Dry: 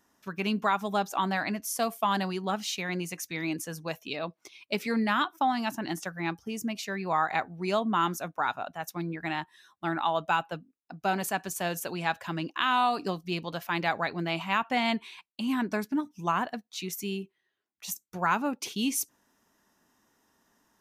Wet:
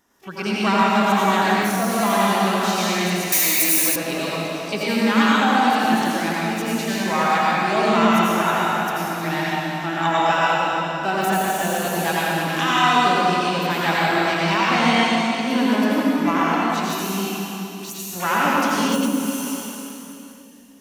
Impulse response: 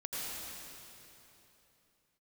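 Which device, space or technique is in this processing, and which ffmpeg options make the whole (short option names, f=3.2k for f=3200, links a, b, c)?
shimmer-style reverb: -filter_complex "[0:a]asplit=2[a][b];[b]asetrate=88200,aresample=44100,atempo=0.5,volume=-11dB[c];[a][c]amix=inputs=2:normalize=0[d];[1:a]atrim=start_sample=2205[e];[d][e]afir=irnorm=-1:irlink=0,deesser=0.65,asettb=1/sr,asplit=3[f][g][h];[f]atrim=end=3.324[i];[g]atrim=start=3.32:end=3.96,asetpts=PTS-STARTPTS,afade=t=in:d=0.004:c=qsin,afade=t=out:st=0.636:d=0.004:c=qsin,aemphasis=mode=production:type=riaa[j];[h]atrim=start=3.956[k];[i][j]acrossfade=d=0.004:c1=hsin:c2=qsin[l];[l][k]acrossfade=d=0.004:c1=qsin:c2=hsin,volume=7.5dB"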